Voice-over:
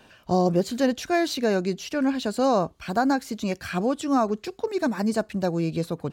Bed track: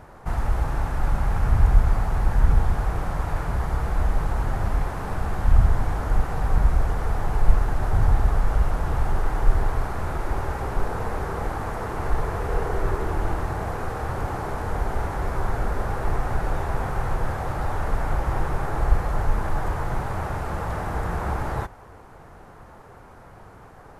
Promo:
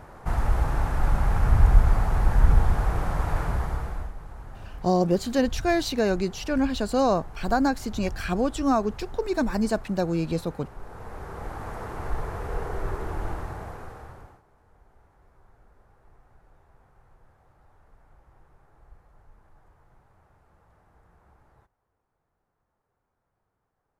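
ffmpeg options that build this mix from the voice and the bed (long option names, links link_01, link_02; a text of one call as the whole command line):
ffmpeg -i stem1.wav -i stem2.wav -filter_complex "[0:a]adelay=4550,volume=-0.5dB[link_01];[1:a]volume=11dB,afade=type=out:start_time=3.43:duration=0.7:silence=0.141254,afade=type=in:start_time=10.79:duration=0.95:silence=0.281838,afade=type=out:start_time=13.28:duration=1.14:silence=0.0446684[link_02];[link_01][link_02]amix=inputs=2:normalize=0" out.wav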